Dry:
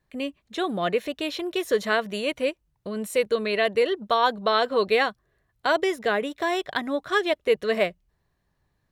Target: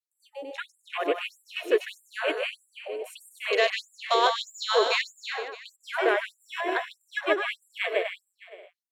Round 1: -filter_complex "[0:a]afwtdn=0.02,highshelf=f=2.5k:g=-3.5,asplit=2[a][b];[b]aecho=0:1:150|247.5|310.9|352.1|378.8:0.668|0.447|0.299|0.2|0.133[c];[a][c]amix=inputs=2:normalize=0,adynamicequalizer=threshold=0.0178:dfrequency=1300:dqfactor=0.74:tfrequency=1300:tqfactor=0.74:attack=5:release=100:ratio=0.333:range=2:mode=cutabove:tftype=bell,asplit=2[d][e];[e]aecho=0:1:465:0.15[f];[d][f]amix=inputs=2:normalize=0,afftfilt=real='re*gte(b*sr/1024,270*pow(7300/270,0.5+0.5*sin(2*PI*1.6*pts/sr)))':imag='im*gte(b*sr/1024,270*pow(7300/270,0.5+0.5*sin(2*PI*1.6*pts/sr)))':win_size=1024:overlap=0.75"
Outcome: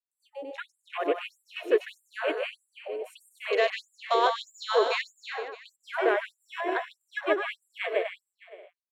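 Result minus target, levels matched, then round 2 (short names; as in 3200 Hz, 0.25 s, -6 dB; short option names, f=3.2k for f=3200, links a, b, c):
4000 Hz band -4.0 dB
-filter_complex "[0:a]afwtdn=0.02,highshelf=f=2.5k:g=5.5,asplit=2[a][b];[b]aecho=0:1:150|247.5|310.9|352.1|378.8:0.668|0.447|0.299|0.2|0.133[c];[a][c]amix=inputs=2:normalize=0,adynamicequalizer=threshold=0.0178:dfrequency=1300:dqfactor=0.74:tfrequency=1300:tqfactor=0.74:attack=5:release=100:ratio=0.333:range=2:mode=cutabove:tftype=bell,asplit=2[d][e];[e]aecho=0:1:465:0.15[f];[d][f]amix=inputs=2:normalize=0,afftfilt=real='re*gte(b*sr/1024,270*pow(7300/270,0.5+0.5*sin(2*PI*1.6*pts/sr)))':imag='im*gte(b*sr/1024,270*pow(7300/270,0.5+0.5*sin(2*PI*1.6*pts/sr)))':win_size=1024:overlap=0.75"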